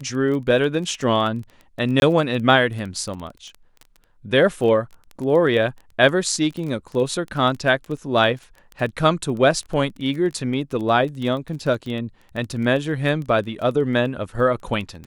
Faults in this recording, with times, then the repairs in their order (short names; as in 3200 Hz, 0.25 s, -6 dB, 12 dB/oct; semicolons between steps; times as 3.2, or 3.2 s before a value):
crackle 20/s -28 dBFS
2–2.02 gap 21 ms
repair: de-click; interpolate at 2, 21 ms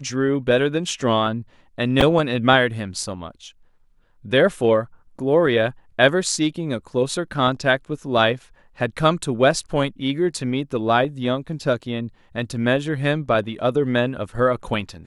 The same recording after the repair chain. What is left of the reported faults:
none